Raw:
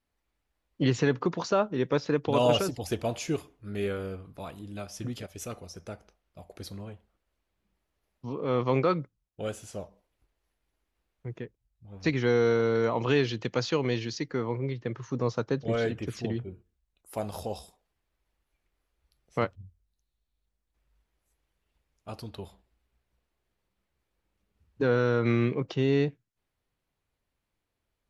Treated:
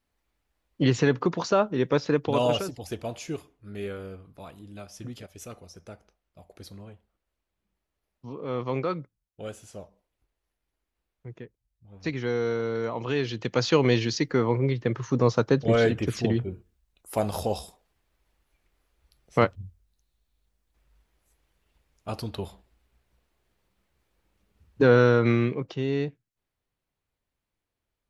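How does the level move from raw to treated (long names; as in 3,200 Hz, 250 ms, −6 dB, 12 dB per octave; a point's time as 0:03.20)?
0:02.15 +3 dB
0:02.70 −3.5 dB
0:13.11 −3.5 dB
0:13.78 +7 dB
0:25.03 +7 dB
0:25.71 −2.5 dB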